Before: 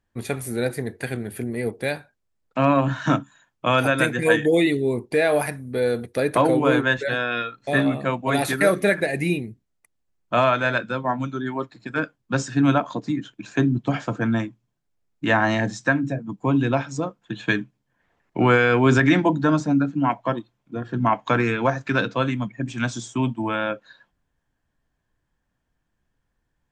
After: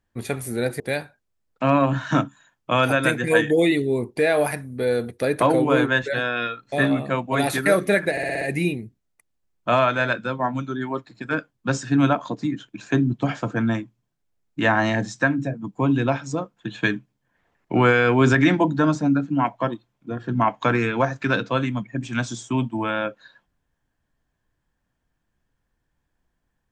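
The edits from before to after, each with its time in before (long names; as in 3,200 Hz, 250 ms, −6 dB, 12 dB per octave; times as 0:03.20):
0:00.80–0:01.75: remove
0:09.06: stutter 0.06 s, 6 plays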